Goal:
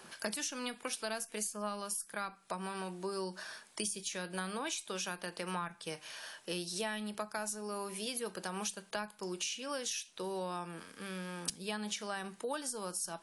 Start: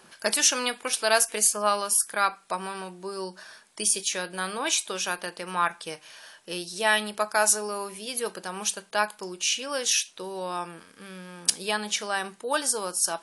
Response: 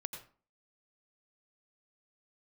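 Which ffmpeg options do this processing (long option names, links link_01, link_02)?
-filter_complex "[0:a]acrossover=split=220[link_01][link_02];[link_02]acompressor=threshold=-36dB:ratio=10[link_03];[link_01][link_03]amix=inputs=2:normalize=0"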